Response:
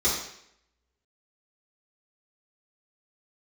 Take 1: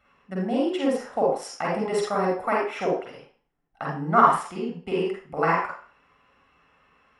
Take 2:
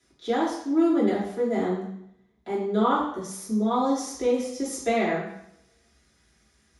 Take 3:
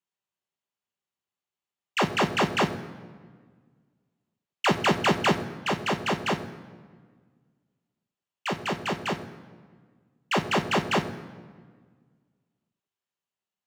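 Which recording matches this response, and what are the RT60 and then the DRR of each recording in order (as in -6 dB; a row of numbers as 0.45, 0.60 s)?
2; 0.40, 0.70, 1.6 s; -3.5, -10.0, 4.5 dB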